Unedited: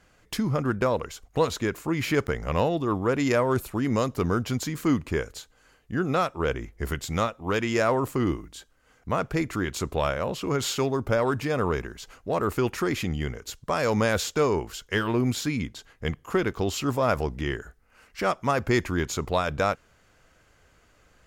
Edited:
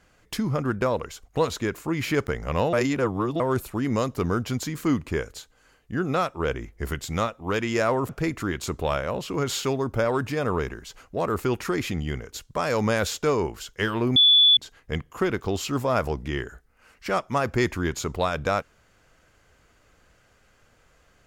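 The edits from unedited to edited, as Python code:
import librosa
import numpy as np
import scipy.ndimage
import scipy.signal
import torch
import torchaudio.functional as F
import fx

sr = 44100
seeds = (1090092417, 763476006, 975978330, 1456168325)

y = fx.edit(x, sr, fx.reverse_span(start_s=2.73, length_s=0.67),
    fx.cut(start_s=8.09, length_s=1.13),
    fx.bleep(start_s=15.29, length_s=0.41, hz=3450.0, db=-12.5), tone=tone)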